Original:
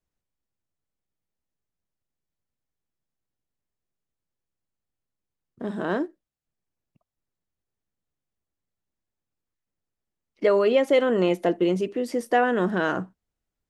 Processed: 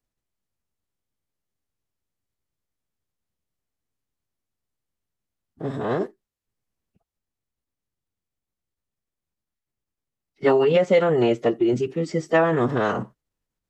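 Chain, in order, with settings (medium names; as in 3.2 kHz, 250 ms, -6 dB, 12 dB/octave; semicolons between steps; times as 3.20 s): formant-preserving pitch shift -7 st; trim +2.5 dB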